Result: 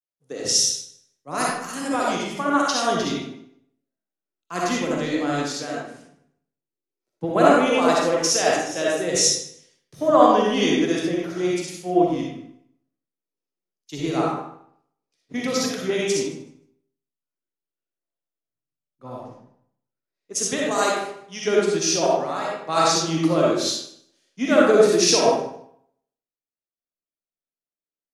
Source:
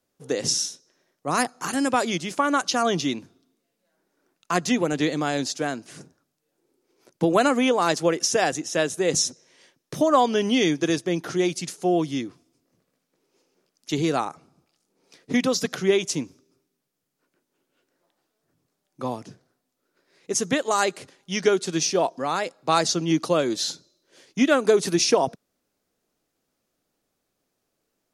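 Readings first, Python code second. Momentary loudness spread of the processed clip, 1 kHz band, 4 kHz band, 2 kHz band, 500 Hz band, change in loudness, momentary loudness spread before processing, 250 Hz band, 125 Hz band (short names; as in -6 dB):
17 LU, +2.5 dB, +2.5 dB, +1.0 dB, +3.0 dB, +2.5 dB, 10 LU, +1.0 dB, 0.0 dB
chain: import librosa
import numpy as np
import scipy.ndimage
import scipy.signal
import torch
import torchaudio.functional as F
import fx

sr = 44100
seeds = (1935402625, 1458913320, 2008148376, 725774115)

y = fx.echo_feedback(x, sr, ms=154, feedback_pct=27, wet_db=-15.5)
y = fx.rev_freeverb(y, sr, rt60_s=0.91, hf_ratio=0.6, predelay_ms=20, drr_db=-4.0)
y = fx.band_widen(y, sr, depth_pct=70)
y = F.gain(torch.from_numpy(y), -4.5).numpy()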